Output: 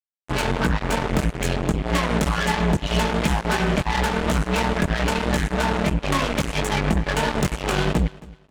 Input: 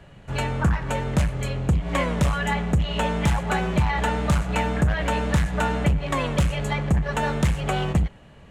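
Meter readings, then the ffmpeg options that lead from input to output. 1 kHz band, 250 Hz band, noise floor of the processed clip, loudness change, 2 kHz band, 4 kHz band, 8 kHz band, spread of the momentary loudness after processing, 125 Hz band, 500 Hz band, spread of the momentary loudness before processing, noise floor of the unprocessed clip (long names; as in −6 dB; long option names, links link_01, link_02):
+2.0 dB, +2.5 dB, −52 dBFS, +1.5 dB, +3.5 dB, +5.5 dB, +4.5 dB, 3 LU, −1.5 dB, +3.0 dB, 3 LU, −48 dBFS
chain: -filter_complex "[0:a]equalizer=frequency=320:width=5.8:gain=8,aecho=1:1:4.7:0.48,asplit=2[link_01][link_02];[link_02]alimiter=limit=-19dB:level=0:latency=1:release=31,volume=-2.5dB[link_03];[link_01][link_03]amix=inputs=2:normalize=0,acompressor=threshold=-20dB:ratio=8,flanger=delay=16.5:depth=5.5:speed=3,acrusher=bits=3:mix=0:aa=0.5,asplit=2[link_04][link_05];[link_05]aecho=0:1:270|540:0.0891|0.0223[link_06];[link_04][link_06]amix=inputs=2:normalize=0,volume=4.5dB"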